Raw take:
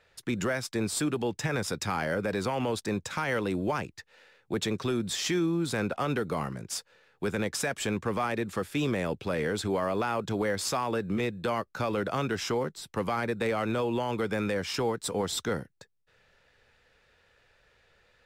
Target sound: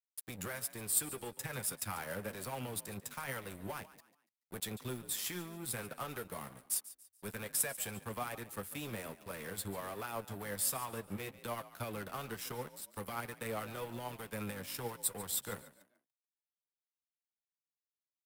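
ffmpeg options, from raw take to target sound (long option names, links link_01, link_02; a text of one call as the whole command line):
ffmpeg -i in.wav -filter_complex "[0:a]equalizer=frequency=320:width_type=o:width=1.1:gain=-6.5,acrossover=split=210|650|5000[link_01][link_02][link_03][link_04];[link_04]aexciter=amount=11.1:drive=3.2:freq=8700[link_05];[link_01][link_02][link_03][link_05]amix=inputs=4:normalize=0,flanger=delay=7.1:depth=3.9:regen=39:speed=1.2:shape=triangular,aeval=exprs='sgn(val(0))*max(abs(val(0))-0.00794,0)':channel_layout=same,asplit=4[link_06][link_07][link_08][link_09];[link_07]adelay=143,afreqshift=44,volume=-16.5dB[link_10];[link_08]adelay=286,afreqshift=88,volume=-25.6dB[link_11];[link_09]adelay=429,afreqshift=132,volume=-34.7dB[link_12];[link_06][link_10][link_11][link_12]amix=inputs=4:normalize=0,volume=-4dB" out.wav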